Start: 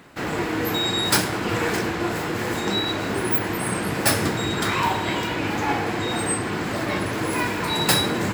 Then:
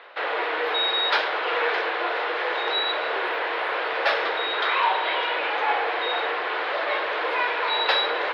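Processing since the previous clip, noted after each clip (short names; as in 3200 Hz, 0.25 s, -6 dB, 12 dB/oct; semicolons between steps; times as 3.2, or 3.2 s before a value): elliptic band-pass 490–3700 Hz, stop band 40 dB; in parallel at -1 dB: limiter -26 dBFS, peak gain reduction 16 dB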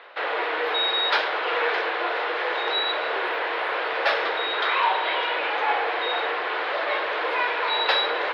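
nothing audible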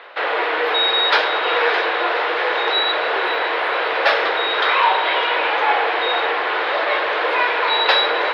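diffused feedback echo 0.567 s, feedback 47%, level -12.5 dB; gain +6 dB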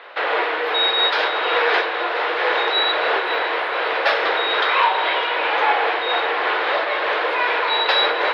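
noise-modulated level, depth 60%; gain +1.5 dB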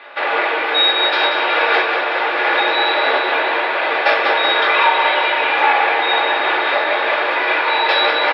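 feedback echo 0.187 s, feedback 59%, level -6.5 dB; reverb, pre-delay 3 ms, DRR -1 dB; gain -1.5 dB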